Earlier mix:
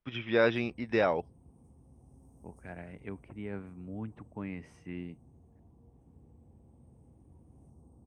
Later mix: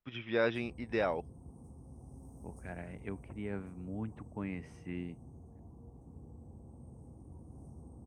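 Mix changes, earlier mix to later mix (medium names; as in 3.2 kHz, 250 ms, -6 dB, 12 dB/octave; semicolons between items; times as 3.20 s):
first voice -5.0 dB; background +6.5 dB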